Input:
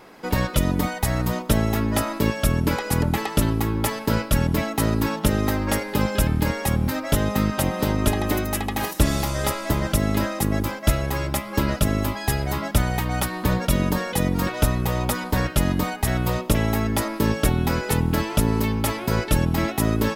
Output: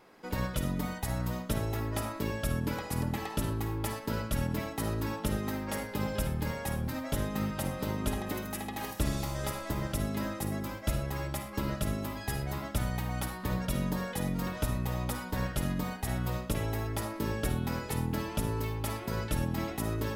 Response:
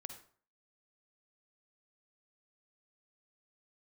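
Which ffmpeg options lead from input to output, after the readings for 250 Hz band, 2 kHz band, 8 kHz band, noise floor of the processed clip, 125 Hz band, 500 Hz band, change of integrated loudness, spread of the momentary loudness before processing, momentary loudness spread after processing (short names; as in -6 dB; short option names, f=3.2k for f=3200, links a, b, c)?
-11.0 dB, -11.5 dB, -11.5 dB, -42 dBFS, -10.0 dB, -11.0 dB, -11.0 dB, 3 LU, 3 LU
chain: -filter_complex "[1:a]atrim=start_sample=2205,afade=t=out:st=0.18:d=0.01,atrim=end_sample=8379[a];[0:a][a]afir=irnorm=-1:irlink=0,volume=-7dB"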